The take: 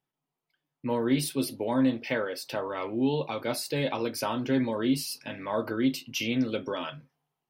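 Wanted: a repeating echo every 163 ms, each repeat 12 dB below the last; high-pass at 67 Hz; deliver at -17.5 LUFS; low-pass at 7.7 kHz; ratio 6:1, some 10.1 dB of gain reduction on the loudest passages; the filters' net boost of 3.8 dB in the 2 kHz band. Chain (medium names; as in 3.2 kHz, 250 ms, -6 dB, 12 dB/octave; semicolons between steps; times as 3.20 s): high-pass 67 Hz; low-pass 7.7 kHz; peaking EQ 2 kHz +5 dB; compression 6:1, threshold -31 dBFS; feedback delay 163 ms, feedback 25%, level -12 dB; trim +18 dB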